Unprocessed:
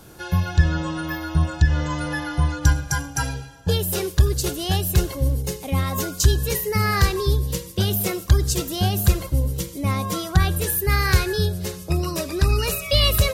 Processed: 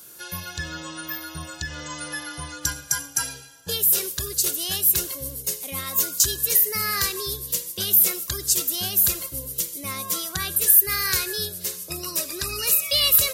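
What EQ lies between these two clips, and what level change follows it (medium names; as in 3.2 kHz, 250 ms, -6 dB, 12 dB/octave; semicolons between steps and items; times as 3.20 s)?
RIAA curve recording; peaking EQ 800 Hz -7.5 dB 0.38 oct; -5.5 dB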